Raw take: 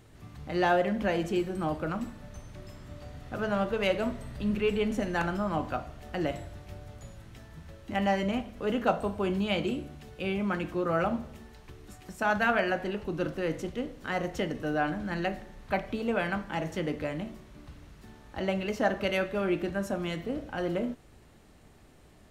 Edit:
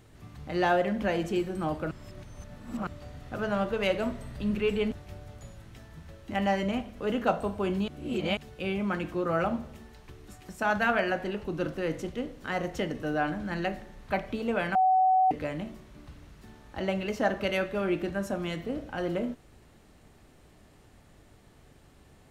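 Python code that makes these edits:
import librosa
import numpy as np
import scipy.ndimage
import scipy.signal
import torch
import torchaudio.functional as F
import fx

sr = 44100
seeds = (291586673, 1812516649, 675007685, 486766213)

y = fx.edit(x, sr, fx.reverse_span(start_s=1.91, length_s=0.96),
    fx.cut(start_s=4.92, length_s=1.6),
    fx.reverse_span(start_s=9.48, length_s=0.49),
    fx.bleep(start_s=16.35, length_s=0.56, hz=751.0, db=-19.0), tone=tone)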